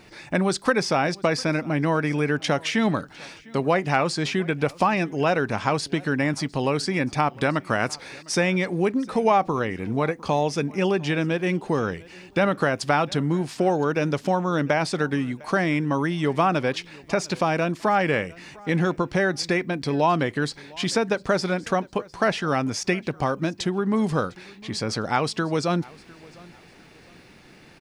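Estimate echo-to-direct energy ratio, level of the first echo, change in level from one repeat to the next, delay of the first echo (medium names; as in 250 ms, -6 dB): -23.0 dB, -23.5 dB, -10.0 dB, 704 ms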